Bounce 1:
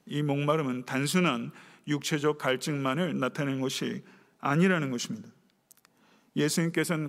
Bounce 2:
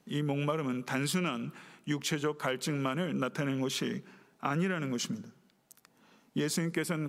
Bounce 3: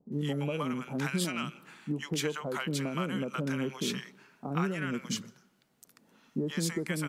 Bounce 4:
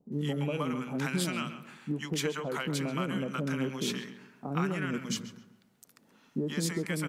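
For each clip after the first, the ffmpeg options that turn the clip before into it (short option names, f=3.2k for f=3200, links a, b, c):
-af "acompressor=threshold=-28dB:ratio=4"
-filter_complex "[0:a]acrossover=split=750[a][b];[b]adelay=120[c];[a][c]amix=inputs=2:normalize=0"
-filter_complex "[0:a]asplit=2[a][b];[b]adelay=135,lowpass=f=2.2k:p=1,volume=-10dB,asplit=2[c][d];[d]adelay=135,lowpass=f=2.2k:p=1,volume=0.38,asplit=2[e][f];[f]adelay=135,lowpass=f=2.2k:p=1,volume=0.38,asplit=2[g][h];[h]adelay=135,lowpass=f=2.2k:p=1,volume=0.38[i];[a][c][e][g][i]amix=inputs=5:normalize=0"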